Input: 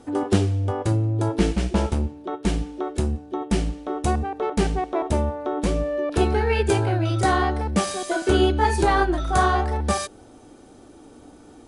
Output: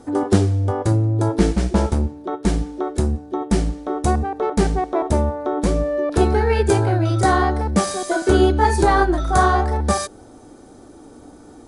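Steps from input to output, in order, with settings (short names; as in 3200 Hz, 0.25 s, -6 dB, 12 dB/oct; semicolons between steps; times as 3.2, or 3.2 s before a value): bell 2800 Hz -8 dB 0.65 oct; gain +4 dB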